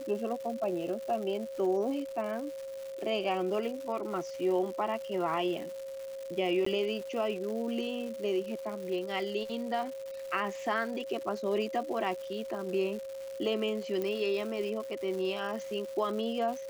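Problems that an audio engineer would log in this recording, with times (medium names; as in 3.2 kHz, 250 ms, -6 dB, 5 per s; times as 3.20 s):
crackle 320 per s -39 dBFS
whine 540 Hz -38 dBFS
6.65–6.66 s: dropout 14 ms
14.02 s: pop -21 dBFS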